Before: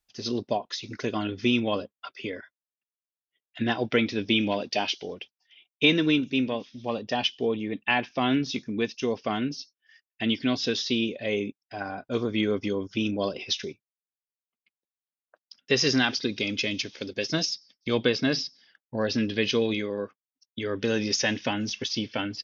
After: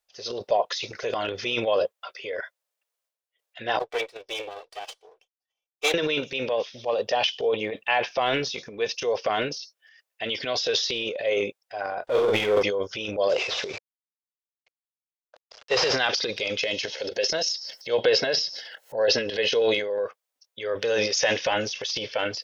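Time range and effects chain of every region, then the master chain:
3.79–5.94 minimum comb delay 2.6 ms + low shelf 170 Hz -10.5 dB + upward expander 2.5:1, over -40 dBFS
12.07–12.63 LPF 4300 Hz + power-law curve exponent 0.7 + doubler 48 ms -4.5 dB
13.29–15.95 CVSD 32 kbps + sustainer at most 110 dB/s
16.61–20.04 notch comb 1200 Hz + upward compressor, threshold -27 dBFS
whole clip: resonant low shelf 370 Hz -11.5 dB, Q 3; transient shaper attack -1 dB, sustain +11 dB

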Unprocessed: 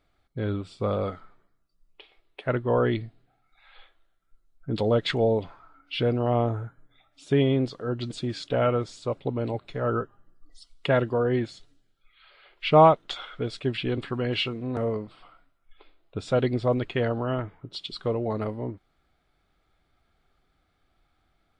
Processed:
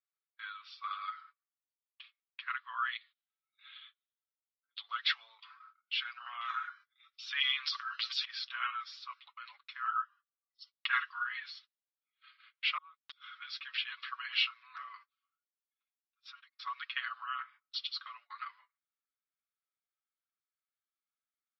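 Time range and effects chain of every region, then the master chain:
2.96–4.89 synth low-pass 3500 Hz, resonance Q 4.1 + compressor 1.5:1, threshold -53 dBFS
6.41–8.25 HPF 500 Hz + high shelf 2100 Hz +12 dB + transient shaper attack -4 dB, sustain +9 dB
10.92–11.37 HPF 930 Hz + dynamic EQ 1400 Hz, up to +5 dB, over -39 dBFS, Q 0.9 + comb 5.5 ms, depth 41%
12.77–13.36 flipped gate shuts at -23 dBFS, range -29 dB + high shelf 7200 Hz +7.5 dB + compressor 16:1, threshold -43 dBFS
15.02–16.59 G.711 law mismatch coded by A + notch comb 250 Hz + compressor, threshold -40 dBFS
whole clip: Chebyshev band-pass 1100–5500 Hz, order 5; comb 7 ms, depth 73%; gate -54 dBFS, range -25 dB; gain -2.5 dB

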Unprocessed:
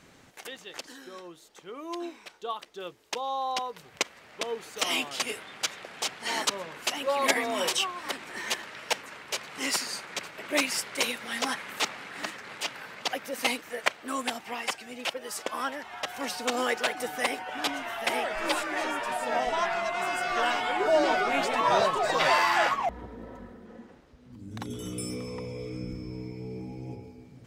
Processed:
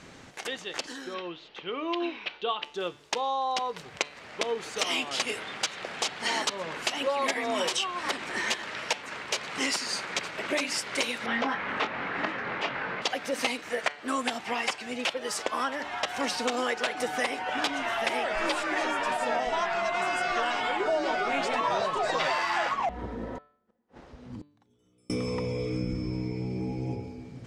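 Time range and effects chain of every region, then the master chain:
1.14–2.64 LPF 4300 Hz 24 dB/oct + bell 2800 Hz +9.5 dB 0.67 oct
11.26–13.02 G.711 law mismatch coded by mu + LPF 2100 Hz + doubler 22 ms -7.5 dB
23.37–25.1 bell 780 Hz +4.5 dB 1.2 oct + flipped gate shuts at -38 dBFS, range -38 dB
whole clip: compressor, threshold -32 dBFS; LPF 7800 Hz 12 dB/oct; de-hum 146.2 Hz, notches 31; gain +7 dB

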